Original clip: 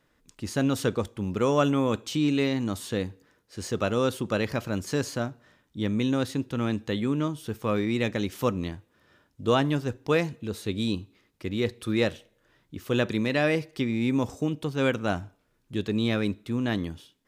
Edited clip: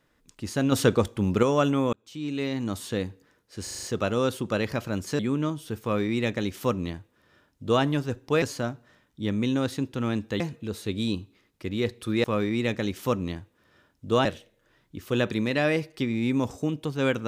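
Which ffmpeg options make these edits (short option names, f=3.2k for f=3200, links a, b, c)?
-filter_complex "[0:a]asplit=14[a][b][c][d][e][f][g][h][i][j][k][l][m][n];[a]atrim=end=0.722[o];[b]atrim=start=0.718:end=1.432,asetpts=PTS-STARTPTS,volume=5.5dB[p];[c]atrim=start=1.428:end=1.93,asetpts=PTS-STARTPTS,afade=t=out:st=0.498:d=0.004:c=hsin[q];[d]atrim=start=1.93:end=3.672,asetpts=PTS-STARTPTS,afade=t=in:d=0.81[r];[e]atrim=start=3.628:end=3.672[s];[f]atrim=start=3.628:end=3.672[t];[g]atrim=start=3.628:end=3.672[u];[h]atrim=start=3.628:end=3.672[v];[i]atrim=start=3.628:end=4.992[w];[j]atrim=start=6.968:end=10.202[x];[k]atrim=start=4.988:end=6.972[y];[l]atrim=start=10.198:end=12.042[z];[m]atrim=start=7.598:end=9.612[aa];[n]atrim=start=12.038[ab];[o][p]acrossfade=d=0.004:c1=hsin:c2=hsin[ac];[q][r]concat=n=2:v=0:a=1[ad];[ac][ad]acrossfade=d=0.004:c1=hsin:c2=hsin[ae];[ae][s]acrossfade=d=0.004:c1=hsin:c2=hsin[af];[af][t]acrossfade=d=0.004:c1=hsin:c2=hsin[ag];[ag][u]acrossfade=d=0.004:c1=hsin:c2=hsin[ah];[ah][v]acrossfade=d=0.004:c1=hsin:c2=hsin[ai];[ai][w]acrossfade=d=0.004:c1=hsin:c2=hsin[aj];[aj][x]acrossfade=d=0.004:c1=hsin:c2=hsin[ak];[ak][y]acrossfade=d=0.004:c1=hsin:c2=hsin[al];[al][z]acrossfade=d=0.004:c1=hsin:c2=hsin[am];[am][aa]acrossfade=d=0.004:c1=hsin:c2=hsin[an];[an][ab]acrossfade=d=0.004:c1=hsin:c2=hsin"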